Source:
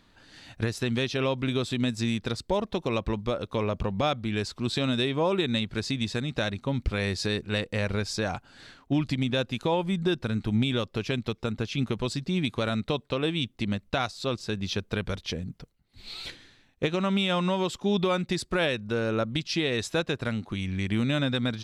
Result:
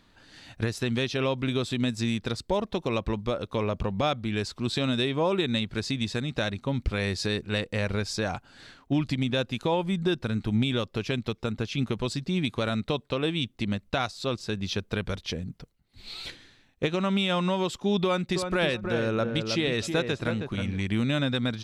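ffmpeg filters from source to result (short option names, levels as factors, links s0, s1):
-filter_complex "[0:a]asettb=1/sr,asplit=3[s0][s1][s2];[s0]atrim=end=18.044[s3];[s1]atrim=start=18.04:end=20.82,asetpts=PTS-STARTPTS,afade=t=in:d=0.004:c=qsin,afade=t=out:st=2.776:d=0.004:c=qsin,asplit=2[s4][s5];[s5]adelay=318,lowpass=f=1600:p=1,volume=0.531,asplit=2[s6][s7];[s7]adelay=318,lowpass=f=1600:p=1,volume=0.24,asplit=2[s8][s9];[s9]adelay=318,lowpass=f=1600:p=1,volume=0.24[s10];[s4][s6][s8][s10]amix=inputs=4:normalize=0,atrim=end_sample=122598[s11];[s2]atrim=start=20.816[s12];[s3][s11]acrossfade=d=0.004:c1=hsin:c2=qsin[s13];[s13][s12]acrossfade=d=0.004:c1=qsin:c2=hsin"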